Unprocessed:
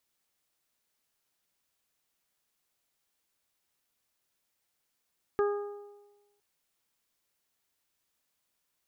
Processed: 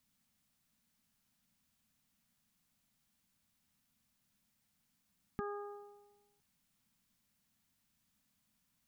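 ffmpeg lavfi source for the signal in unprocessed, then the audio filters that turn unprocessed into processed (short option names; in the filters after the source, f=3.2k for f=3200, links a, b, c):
-f lavfi -i "aevalsrc='0.075*pow(10,-3*t/1.15)*sin(2*PI*409*t)+0.0178*pow(10,-3*t/1.24)*sin(2*PI*818*t)+0.0251*pow(10,-3*t/0.88)*sin(2*PI*1227*t)+0.0112*pow(10,-3*t/0.66)*sin(2*PI*1636*t)':d=1.01:s=44100"
-af "lowshelf=f=290:t=q:w=3:g=9.5,alimiter=level_in=2.5dB:limit=-24dB:level=0:latency=1:release=340,volume=-2.5dB"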